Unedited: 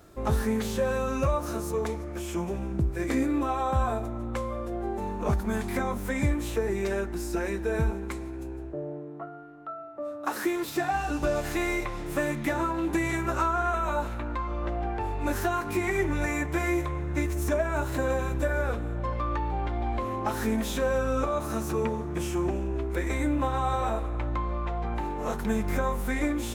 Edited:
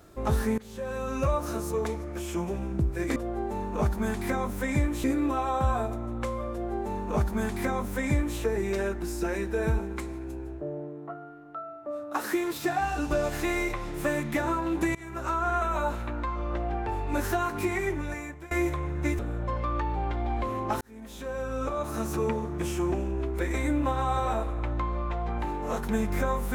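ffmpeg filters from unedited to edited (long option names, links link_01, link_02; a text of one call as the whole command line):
ffmpeg -i in.wav -filter_complex "[0:a]asplit=8[link_01][link_02][link_03][link_04][link_05][link_06][link_07][link_08];[link_01]atrim=end=0.58,asetpts=PTS-STARTPTS,afade=type=out:start_time=0.576:duration=0.004:curve=hsin:silence=0.0749894[link_09];[link_02]atrim=start=0.58:end=3.162,asetpts=PTS-STARTPTS,afade=type=in:duration=0.73:silence=0.0749894[link_10];[link_03]atrim=start=4.628:end=6.512[link_11];[link_04]atrim=start=3.158:end=13.07,asetpts=PTS-STARTPTS,afade=type=out:start_time=9.908:duration=0.004:curve=hsin:silence=0.0749894[link_12];[link_05]atrim=start=13.07:end=16.63,asetpts=PTS-STARTPTS,afade=type=in:duration=0.54:silence=0.0749894,afade=type=out:start_time=2.65:duration=0.91:silence=0.0944061[link_13];[link_06]atrim=start=16.63:end=17.312,asetpts=PTS-STARTPTS,afade=type=in:duration=0.004:curve=hsin:silence=0.0944061[link_14];[link_07]atrim=start=18.748:end=20.37,asetpts=PTS-STARTPTS,afade=type=out:start_time=1.618:duration=0.004:curve=hsin[link_15];[link_08]atrim=start=20.37,asetpts=PTS-STARTPTS,afade=type=in:duration=1.29[link_16];[link_09][link_10]concat=n=2:v=0:a=1[link_17];[link_17][link_11]acrossfade=duration=0.004:curve1=hsin:curve2=hsin[link_18];[link_12][link_13][link_14]concat=n=3:v=0:a=1[link_19];[link_18][link_19]acrossfade=duration=0.004:curve1=hsin:curve2=hsin[link_20];[link_15][link_16]concat=n=2:v=0:a=1[link_21];[link_20][link_21]acrossfade=duration=0.004:curve1=hsin:curve2=hsin" out.wav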